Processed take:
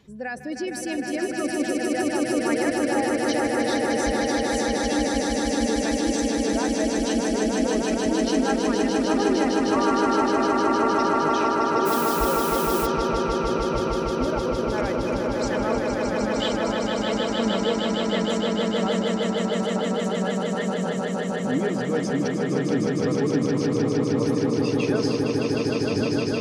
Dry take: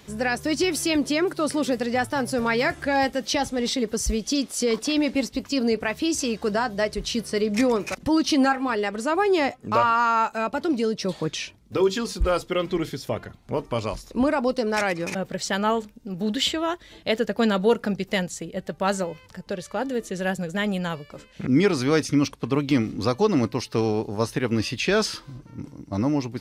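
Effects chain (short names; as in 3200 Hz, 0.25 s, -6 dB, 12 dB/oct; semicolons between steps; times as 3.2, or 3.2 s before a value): spectral contrast raised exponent 1.5; swelling echo 0.154 s, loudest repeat 8, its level -4 dB; 11.85–12.85 added noise blue -26 dBFS; gain -7 dB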